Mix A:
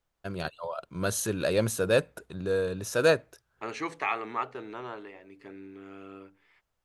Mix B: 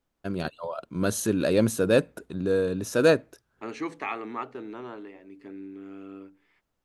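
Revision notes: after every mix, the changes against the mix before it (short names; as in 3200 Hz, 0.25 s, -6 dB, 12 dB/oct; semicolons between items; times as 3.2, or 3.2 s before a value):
second voice -3.5 dB; master: add bell 260 Hz +10.5 dB 1.1 oct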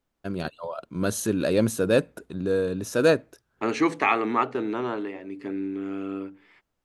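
second voice +10.5 dB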